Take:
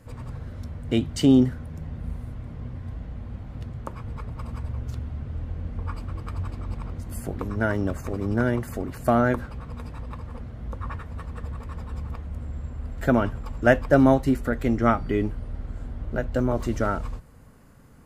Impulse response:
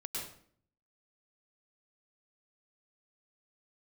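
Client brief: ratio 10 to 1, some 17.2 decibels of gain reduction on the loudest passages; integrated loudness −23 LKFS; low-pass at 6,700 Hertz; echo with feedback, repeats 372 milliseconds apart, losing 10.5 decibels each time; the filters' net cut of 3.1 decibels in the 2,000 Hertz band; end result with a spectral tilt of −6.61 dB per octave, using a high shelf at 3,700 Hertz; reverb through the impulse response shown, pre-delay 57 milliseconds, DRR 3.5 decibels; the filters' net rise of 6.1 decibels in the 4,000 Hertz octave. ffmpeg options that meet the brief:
-filter_complex "[0:a]lowpass=6700,equalizer=frequency=2000:width_type=o:gain=-7.5,highshelf=frequency=3700:gain=6,equalizer=frequency=4000:width_type=o:gain=8.5,acompressor=threshold=-30dB:ratio=10,aecho=1:1:372|744|1116:0.299|0.0896|0.0269,asplit=2[link_01][link_02];[1:a]atrim=start_sample=2205,adelay=57[link_03];[link_02][link_03]afir=irnorm=-1:irlink=0,volume=-4dB[link_04];[link_01][link_04]amix=inputs=2:normalize=0,volume=11.5dB"

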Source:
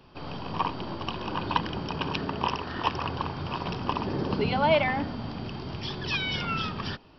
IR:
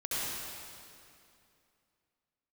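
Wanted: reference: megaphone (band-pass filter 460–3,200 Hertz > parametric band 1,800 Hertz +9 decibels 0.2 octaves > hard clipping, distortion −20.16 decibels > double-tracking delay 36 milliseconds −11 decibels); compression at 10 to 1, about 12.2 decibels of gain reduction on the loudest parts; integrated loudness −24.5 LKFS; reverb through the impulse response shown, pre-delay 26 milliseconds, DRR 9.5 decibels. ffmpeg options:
-filter_complex "[0:a]acompressor=threshold=-30dB:ratio=10,asplit=2[link_01][link_02];[1:a]atrim=start_sample=2205,adelay=26[link_03];[link_02][link_03]afir=irnorm=-1:irlink=0,volume=-16dB[link_04];[link_01][link_04]amix=inputs=2:normalize=0,highpass=460,lowpass=3200,equalizer=frequency=1800:width_type=o:width=0.2:gain=9,asoftclip=type=hard:threshold=-25.5dB,asplit=2[link_05][link_06];[link_06]adelay=36,volume=-11dB[link_07];[link_05][link_07]amix=inputs=2:normalize=0,volume=12dB"

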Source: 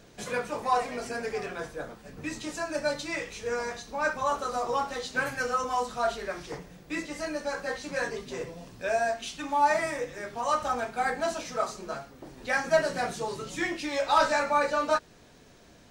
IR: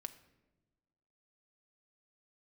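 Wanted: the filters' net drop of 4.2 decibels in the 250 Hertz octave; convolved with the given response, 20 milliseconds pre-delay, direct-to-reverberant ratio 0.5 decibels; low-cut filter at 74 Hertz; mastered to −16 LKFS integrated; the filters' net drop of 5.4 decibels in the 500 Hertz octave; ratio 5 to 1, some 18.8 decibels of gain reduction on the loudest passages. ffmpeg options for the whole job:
-filter_complex "[0:a]highpass=74,equalizer=frequency=250:width_type=o:gain=-3,equalizer=frequency=500:width_type=o:gain=-6.5,acompressor=threshold=-42dB:ratio=5,asplit=2[link_01][link_02];[1:a]atrim=start_sample=2205,adelay=20[link_03];[link_02][link_03]afir=irnorm=-1:irlink=0,volume=3.5dB[link_04];[link_01][link_04]amix=inputs=2:normalize=0,volume=25.5dB"

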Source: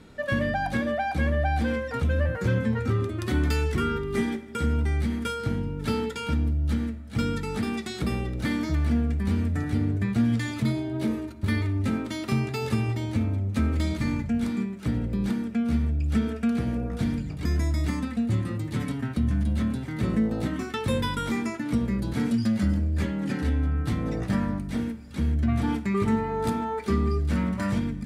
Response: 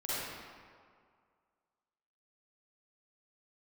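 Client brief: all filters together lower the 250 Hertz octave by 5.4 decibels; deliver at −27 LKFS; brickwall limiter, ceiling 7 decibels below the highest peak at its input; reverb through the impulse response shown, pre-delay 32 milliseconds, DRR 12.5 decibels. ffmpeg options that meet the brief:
-filter_complex "[0:a]equalizer=frequency=250:width_type=o:gain=-6.5,alimiter=limit=-21.5dB:level=0:latency=1,asplit=2[link_01][link_02];[1:a]atrim=start_sample=2205,adelay=32[link_03];[link_02][link_03]afir=irnorm=-1:irlink=0,volume=-18dB[link_04];[link_01][link_04]amix=inputs=2:normalize=0,volume=4dB"

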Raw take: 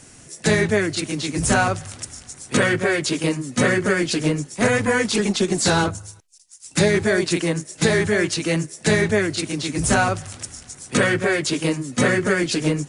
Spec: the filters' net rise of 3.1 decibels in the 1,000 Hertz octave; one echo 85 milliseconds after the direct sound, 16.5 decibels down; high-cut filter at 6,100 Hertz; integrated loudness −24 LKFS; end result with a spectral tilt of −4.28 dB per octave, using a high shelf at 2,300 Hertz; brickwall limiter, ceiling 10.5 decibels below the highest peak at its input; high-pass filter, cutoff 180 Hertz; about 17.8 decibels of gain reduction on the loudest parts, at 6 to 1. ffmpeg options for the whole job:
ffmpeg -i in.wav -af "highpass=180,lowpass=6100,equalizer=frequency=1000:width_type=o:gain=5.5,highshelf=frequency=2300:gain=-5.5,acompressor=threshold=-34dB:ratio=6,alimiter=level_in=6dB:limit=-24dB:level=0:latency=1,volume=-6dB,aecho=1:1:85:0.15,volume=15.5dB" out.wav

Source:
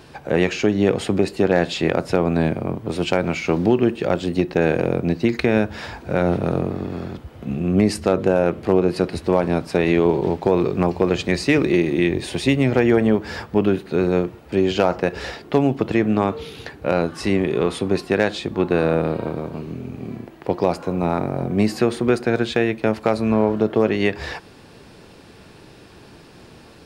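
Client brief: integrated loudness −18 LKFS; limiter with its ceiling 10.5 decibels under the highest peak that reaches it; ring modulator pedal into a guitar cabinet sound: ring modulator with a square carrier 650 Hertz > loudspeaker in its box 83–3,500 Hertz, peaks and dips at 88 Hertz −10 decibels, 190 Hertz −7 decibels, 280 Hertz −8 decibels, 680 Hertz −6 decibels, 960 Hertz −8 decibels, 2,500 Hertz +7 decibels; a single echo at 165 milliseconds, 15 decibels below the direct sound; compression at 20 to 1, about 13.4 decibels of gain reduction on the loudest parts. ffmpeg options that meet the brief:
ffmpeg -i in.wav -af "acompressor=threshold=-25dB:ratio=20,alimiter=limit=-21.5dB:level=0:latency=1,aecho=1:1:165:0.178,aeval=exprs='val(0)*sgn(sin(2*PI*650*n/s))':channel_layout=same,highpass=83,equalizer=frequency=88:width_type=q:width=4:gain=-10,equalizer=frequency=190:width_type=q:width=4:gain=-7,equalizer=frequency=280:width_type=q:width=4:gain=-8,equalizer=frequency=680:width_type=q:width=4:gain=-6,equalizer=frequency=960:width_type=q:width=4:gain=-8,equalizer=frequency=2500:width_type=q:width=4:gain=7,lowpass=frequency=3500:width=0.5412,lowpass=frequency=3500:width=1.3066,volume=16dB" out.wav

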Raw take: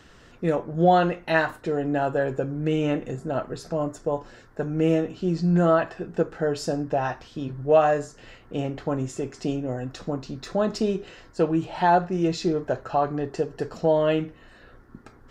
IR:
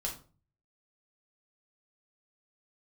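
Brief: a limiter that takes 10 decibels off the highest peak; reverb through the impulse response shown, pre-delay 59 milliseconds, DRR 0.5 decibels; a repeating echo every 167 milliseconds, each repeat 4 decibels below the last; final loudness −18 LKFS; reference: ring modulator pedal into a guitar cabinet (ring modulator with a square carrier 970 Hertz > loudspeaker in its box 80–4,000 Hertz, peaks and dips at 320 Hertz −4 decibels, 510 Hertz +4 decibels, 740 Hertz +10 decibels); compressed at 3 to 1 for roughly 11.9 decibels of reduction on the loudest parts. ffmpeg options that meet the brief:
-filter_complex "[0:a]acompressor=threshold=-30dB:ratio=3,alimiter=level_in=4dB:limit=-24dB:level=0:latency=1,volume=-4dB,aecho=1:1:167|334|501|668|835|1002|1169|1336|1503:0.631|0.398|0.25|0.158|0.0994|0.0626|0.0394|0.0249|0.0157,asplit=2[link_01][link_02];[1:a]atrim=start_sample=2205,adelay=59[link_03];[link_02][link_03]afir=irnorm=-1:irlink=0,volume=-2dB[link_04];[link_01][link_04]amix=inputs=2:normalize=0,aeval=exprs='val(0)*sgn(sin(2*PI*970*n/s))':channel_layout=same,highpass=80,equalizer=frequency=320:width_type=q:width=4:gain=-4,equalizer=frequency=510:width_type=q:width=4:gain=4,equalizer=frequency=740:width_type=q:width=4:gain=10,lowpass=frequency=4000:width=0.5412,lowpass=frequency=4000:width=1.3066,volume=10.5dB"

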